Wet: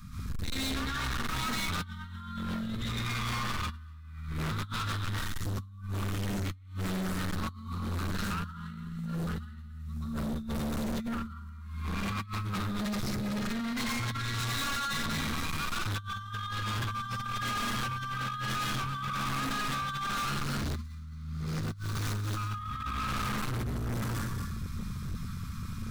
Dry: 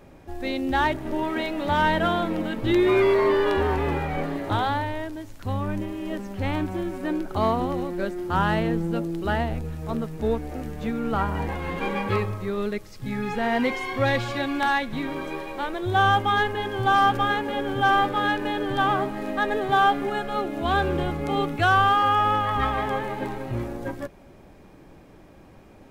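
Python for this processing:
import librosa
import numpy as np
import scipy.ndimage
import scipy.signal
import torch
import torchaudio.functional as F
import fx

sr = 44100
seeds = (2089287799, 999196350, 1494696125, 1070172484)

y = fx.median_filter(x, sr, points=41, at=(20.2, 22.37))
y = scipy.signal.sosfilt(scipy.signal.cheby1(4, 1.0, [220.0, 1200.0], 'bandstop', fs=sr, output='sos'), y)
y = fx.band_shelf(y, sr, hz=2200.0, db=-10.5, octaves=1.2)
y = y + 10.0 ** (-9.0 / 20.0) * np.pad(y, (int(229 * sr / 1000.0), 0))[:len(y)]
y = fx.rev_plate(y, sr, seeds[0], rt60_s=0.55, hf_ratio=0.95, predelay_ms=115, drr_db=-8.5)
y = fx.over_compress(y, sr, threshold_db=-28.0, ratio=-0.5)
y = np.clip(y, -10.0 ** (-33.0 / 20.0), 10.0 ** (-33.0 / 20.0))
y = F.gain(torch.from_numpy(y), 2.0).numpy()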